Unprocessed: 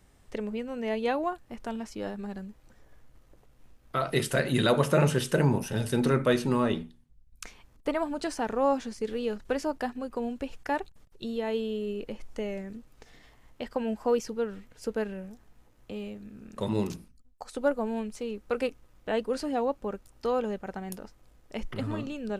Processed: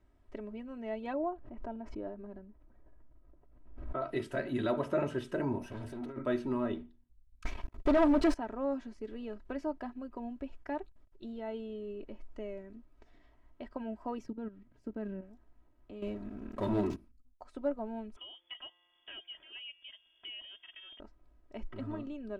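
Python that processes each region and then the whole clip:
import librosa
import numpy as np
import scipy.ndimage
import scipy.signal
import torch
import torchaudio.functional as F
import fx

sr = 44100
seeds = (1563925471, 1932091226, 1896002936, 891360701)

y = fx.chain(x, sr, fx.lowpass(hz=1100.0, slope=6),
    fx.dynamic_eq(hz=530.0, q=1.5, threshold_db=-44.0, ratio=4.0, max_db=5),
    fx.pre_swell(db_per_s=61.0), at=(1.13, 4.02))
y = fx.chain(y, sr, fx.over_compress(threshold_db=-28.0, ratio=-0.5),
    fx.overload_stage(gain_db=30.0), at=(5.61, 6.18))
y = fx.chain(y, sr, fx.low_shelf(hz=71.0, db=4.5),
    fx.leveller(passes=5), at=(7.45, 8.34))
y = fx.chain(y, sr, fx.peak_eq(hz=160.0, db=13.5, octaves=1.6),
    fx.level_steps(step_db=14), at=(14.2, 15.22))
y = fx.chain(y, sr, fx.dead_time(dead_ms=0.051),
    fx.leveller(passes=3), at=(16.02, 16.96))
y = fx.chain(y, sr, fx.comb_fb(f0_hz=180.0, decay_s=1.4, harmonics='all', damping=0.0, mix_pct=50),
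    fx.freq_invert(carrier_hz=3400),
    fx.band_squash(depth_pct=70), at=(18.16, 21.0))
y = fx.lowpass(y, sr, hz=3800.0, slope=6)
y = fx.high_shelf(y, sr, hz=2700.0, db=-11.5)
y = y + 0.71 * np.pad(y, (int(3.1 * sr / 1000.0), 0))[:len(y)]
y = y * 10.0 ** (-8.5 / 20.0)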